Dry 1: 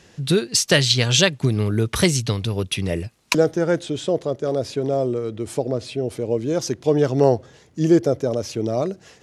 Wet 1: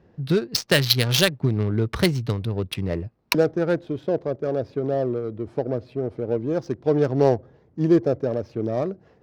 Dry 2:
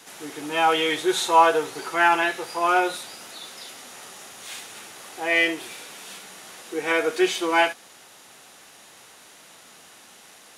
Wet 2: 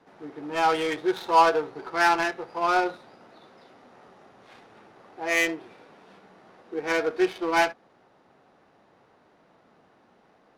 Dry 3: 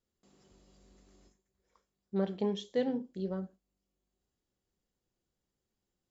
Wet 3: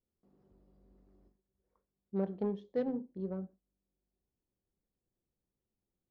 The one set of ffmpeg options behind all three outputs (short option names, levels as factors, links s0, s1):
-af "adynamicsmooth=sensitivity=1:basefreq=1000,aexciter=amount=1.4:drive=6.8:freq=4200,volume=0.794"